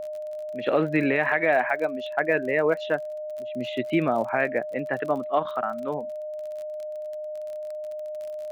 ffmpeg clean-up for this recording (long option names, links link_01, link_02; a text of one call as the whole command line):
ffmpeg -i in.wav -af "adeclick=threshold=4,bandreject=frequency=610:width=30" out.wav